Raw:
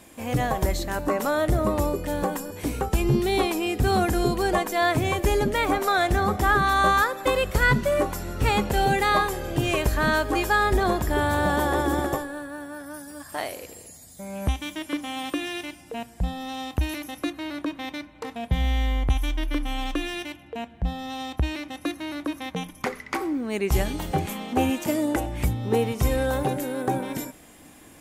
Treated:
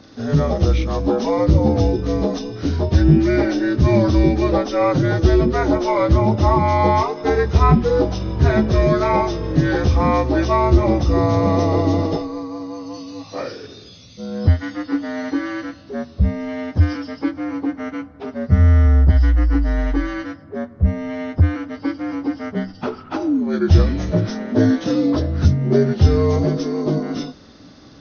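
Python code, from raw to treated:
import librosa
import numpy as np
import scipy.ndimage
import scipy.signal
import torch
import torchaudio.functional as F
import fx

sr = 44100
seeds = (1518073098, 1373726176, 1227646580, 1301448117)

y = fx.partial_stretch(x, sr, pct=79)
y = fx.low_shelf(y, sr, hz=410.0, db=10.5)
y = y * 10.0 ** (2.0 / 20.0)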